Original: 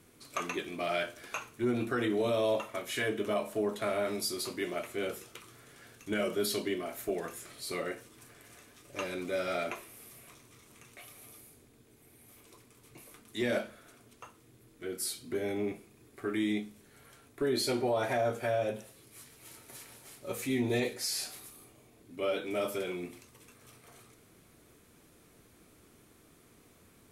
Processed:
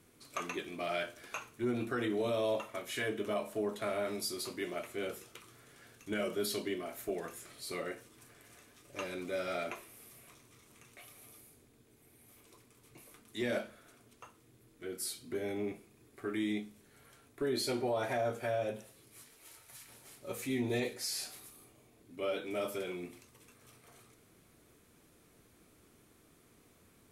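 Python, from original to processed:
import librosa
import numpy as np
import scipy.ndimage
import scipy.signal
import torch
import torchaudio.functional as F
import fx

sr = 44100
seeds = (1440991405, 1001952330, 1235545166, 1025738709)

y = fx.peak_eq(x, sr, hz=fx.line((19.22, 66.0), (19.87, 550.0)), db=-14.5, octaves=1.3, at=(19.22, 19.87), fade=0.02)
y = y * 10.0 ** (-3.5 / 20.0)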